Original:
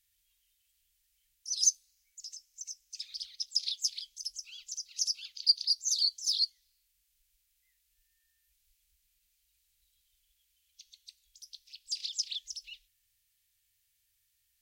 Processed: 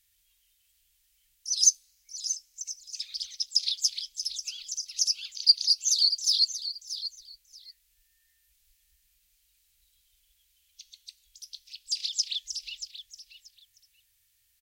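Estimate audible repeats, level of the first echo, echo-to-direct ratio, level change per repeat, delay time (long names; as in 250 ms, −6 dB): 2, −11.5 dB, −11.5 dB, −14.5 dB, 632 ms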